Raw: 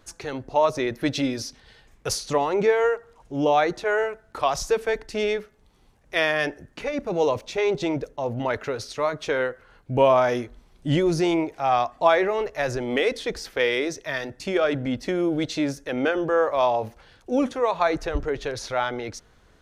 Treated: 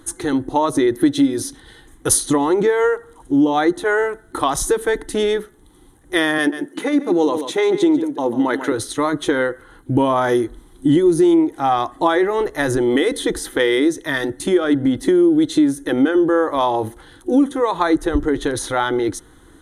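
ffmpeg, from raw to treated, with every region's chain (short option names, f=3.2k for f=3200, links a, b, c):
-filter_complex "[0:a]asettb=1/sr,asplit=3[a][b][c];[a]atrim=end=6.384[d];[b]atrim=start=6.38:end=8.72,asetpts=PTS-STARTPTS,afade=t=in:d=0.004:c=qsin,afade=t=out:st=2.336:d=0.004:c=qsin,highpass=f=180:w=0.5412,highpass=f=180:w=1.3066,aecho=1:1:141:0.237,atrim=end_sample=103194[e];[c]atrim=start=8.716[f];[d][e]acrossfade=d=0.004:c1=hsin:c2=qsin[g];[g][f]acrossfade=d=0.004:c1=qsin:c2=hsin,superequalizer=6b=3.55:8b=0.501:12b=0.316:14b=0.316:15b=0.631,acompressor=threshold=-22dB:ratio=3,equalizer=f=9.7k:t=o:w=0.65:g=14,volume=8dB"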